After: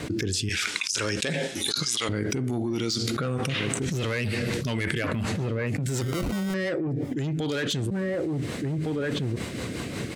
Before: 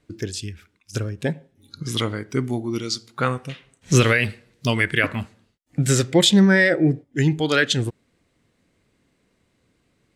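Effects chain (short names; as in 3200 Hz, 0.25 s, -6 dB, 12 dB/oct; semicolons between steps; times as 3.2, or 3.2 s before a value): dynamic EQ 1800 Hz, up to -5 dB, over -31 dBFS, Q 1.6; soft clip -17 dBFS, distortion -10 dB; HPF 75 Hz; outdoor echo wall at 250 m, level -23 dB; limiter -22 dBFS, peak gain reduction 10 dB; 0.49–2.09 weighting filter ITU-R 468; 6.01–6.54 sample-rate reducer 1700 Hz, jitter 0%; rotary speaker horn 1 Hz, later 5.5 Hz, at 3.54; fast leveller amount 100%; gain -4.5 dB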